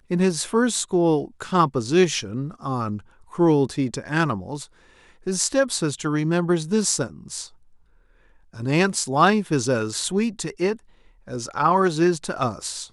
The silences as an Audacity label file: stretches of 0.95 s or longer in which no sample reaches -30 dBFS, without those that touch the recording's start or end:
7.450000	8.570000	silence